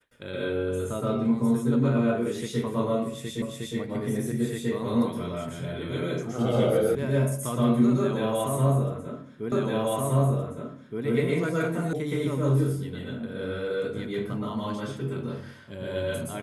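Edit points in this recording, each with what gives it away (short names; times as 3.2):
3.42 repeat of the last 0.36 s
6.95 sound cut off
9.52 repeat of the last 1.52 s
11.93 sound cut off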